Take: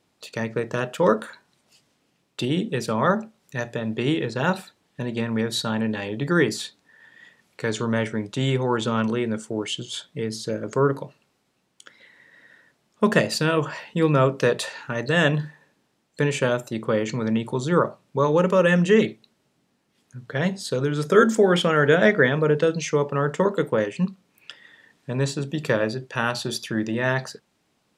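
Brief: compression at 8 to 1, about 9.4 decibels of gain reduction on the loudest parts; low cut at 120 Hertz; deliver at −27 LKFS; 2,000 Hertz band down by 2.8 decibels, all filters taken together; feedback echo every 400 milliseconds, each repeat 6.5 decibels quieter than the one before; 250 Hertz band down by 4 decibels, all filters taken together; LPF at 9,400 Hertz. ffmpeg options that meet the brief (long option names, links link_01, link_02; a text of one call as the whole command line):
ffmpeg -i in.wav -af "highpass=120,lowpass=9400,equalizer=frequency=250:width_type=o:gain=-5,equalizer=frequency=2000:width_type=o:gain=-3.5,acompressor=threshold=-22dB:ratio=8,aecho=1:1:400|800|1200|1600|2000|2400:0.473|0.222|0.105|0.0491|0.0231|0.0109,volume=1.5dB" out.wav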